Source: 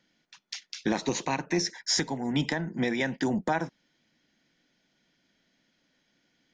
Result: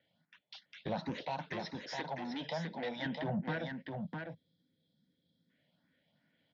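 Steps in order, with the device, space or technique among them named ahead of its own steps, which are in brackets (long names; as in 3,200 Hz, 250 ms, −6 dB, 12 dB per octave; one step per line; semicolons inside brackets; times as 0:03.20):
barber-pole phaser into a guitar amplifier (frequency shifter mixed with the dry sound +2.5 Hz; soft clipping −29.5 dBFS, distortion −10 dB; loudspeaker in its box 76–3,700 Hz, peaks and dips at 100 Hz +9 dB, 160 Hz +7 dB, 360 Hz −10 dB, 600 Hz +6 dB, 1,200 Hz −5 dB, 2,500 Hz −5 dB)
0:03.69–0:05.50: gain on a spectral selection 540–3,200 Hz −15 dB
low-pass filter 5,800 Hz 24 dB per octave
0:01.23–0:03.06: bass and treble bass −11 dB, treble +8 dB
single-tap delay 656 ms −5 dB
level −1.5 dB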